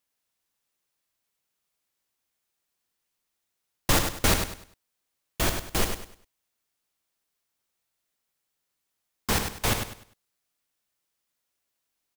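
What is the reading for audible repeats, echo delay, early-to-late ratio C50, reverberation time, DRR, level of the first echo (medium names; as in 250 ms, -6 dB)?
3, 100 ms, no reverb, no reverb, no reverb, -7.0 dB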